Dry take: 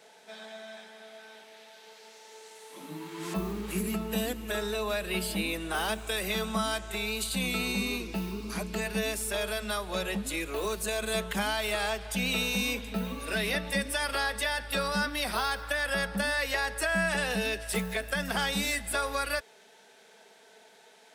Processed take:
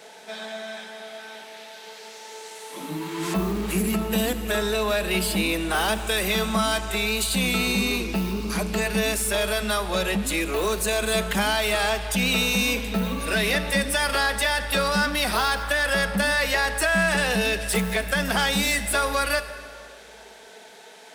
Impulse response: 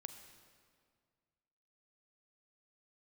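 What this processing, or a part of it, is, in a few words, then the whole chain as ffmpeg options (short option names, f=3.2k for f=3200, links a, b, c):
saturated reverb return: -filter_complex "[0:a]asplit=2[a][b];[1:a]atrim=start_sample=2205[c];[b][c]afir=irnorm=-1:irlink=0,asoftclip=type=tanh:threshold=-38.5dB,volume=6.5dB[d];[a][d]amix=inputs=2:normalize=0,volume=3.5dB"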